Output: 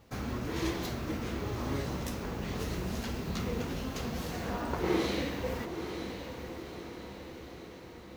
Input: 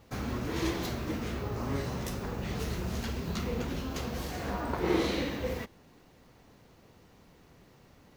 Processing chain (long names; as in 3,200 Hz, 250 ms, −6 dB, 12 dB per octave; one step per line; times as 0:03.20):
feedback delay with all-pass diffusion 945 ms, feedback 59%, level −8 dB
level −1.5 dB